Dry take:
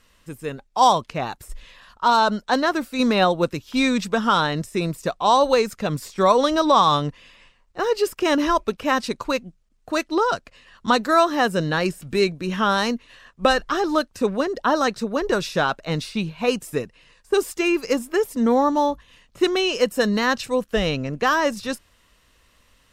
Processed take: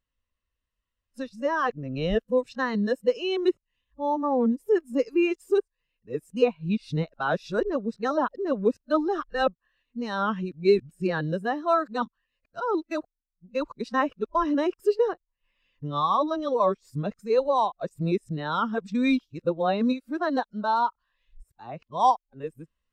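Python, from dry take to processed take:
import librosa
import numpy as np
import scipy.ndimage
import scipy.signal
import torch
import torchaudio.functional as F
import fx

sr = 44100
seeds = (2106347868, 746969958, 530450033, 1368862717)

y = np.flip(x).copy()
y = fx.rider(y, sr, range_db=3, speed_s=0.5)
y = fx.spectral_expand(y, sr, expansion=1.5)
y = y * librosa.db_to_amplitude(-4.0)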